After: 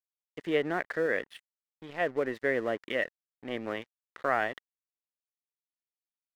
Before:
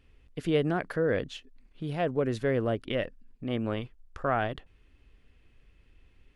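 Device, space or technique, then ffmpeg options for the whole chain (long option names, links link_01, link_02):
pocket radio on a weak battery: -filter_complex "[0:a]asettb=1/sr,asplit=3[link_01][link_02][link_03];[link_01]atrim=end=1.064[link_04];[link_02]atrim=start=1.06:end=2.01,asetpts=PTS-STARTPTS,afade=type=in:duration=0.004:curve=qsin,afade=type=out:start_time=0.946:duration=0.004:curve=qsin,lowshelf=frequency=480:gain=-3.5[link_05];[link_03]atrim=start=2.006[link_06];[link_04][link_05]acrossfade=duration=0.004:curve1=hsin:curve2=qsin[link_07];[link_07][link_06]acrossfade=duration=0.004:curve1=qsin:curve2=hsin,highpass=310,lowpass=3400,aeval=exprs='sgn(val(0))*max(abs(val(0))-0.00398,0)':channel_layout=same,equalizer=frequency=1900:width_type=o:width=0.31:gain=10.5"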